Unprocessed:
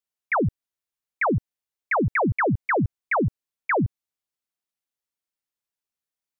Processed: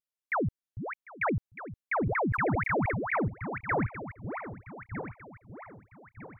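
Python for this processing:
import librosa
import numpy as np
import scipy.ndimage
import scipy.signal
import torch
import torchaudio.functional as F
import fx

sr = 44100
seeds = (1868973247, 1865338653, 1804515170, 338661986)

p1 = fx.reverse_delay_fb(x, sr, ms=627, feedback_pct=59, wet_db=-8.5)
p2 = fx.vibrato(p1, sr, rate_hz=2.6, depth_cents=48.0)
p3 = p2 + fx.echo_single(p2, sr, ms=748, db=-20.5, dry=0)
p4 = fx.sustainer(p3, sr, db_per_s=31.0, at=(1.93, 3.25))
y = p4 * 10.0 ** (-7.0 / 20.0)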